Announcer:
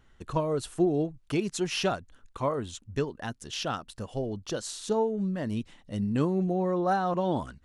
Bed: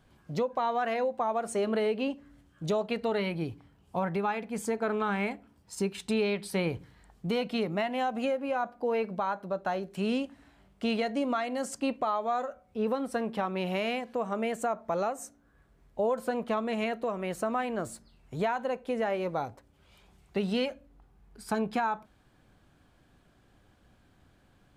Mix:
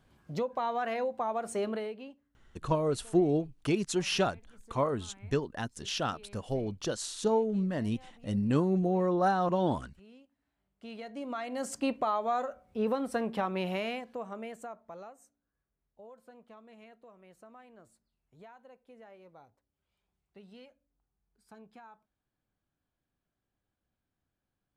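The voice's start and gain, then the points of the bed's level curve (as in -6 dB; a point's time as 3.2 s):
2.35 s, -0.5 dB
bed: 1.65 s -3 dB
2.41 s -26.5 dB
10.32 s -26.5 dB
11.71 s -0.5 dB
13.57 s -0.5 dB
15.61 s -23.5 dB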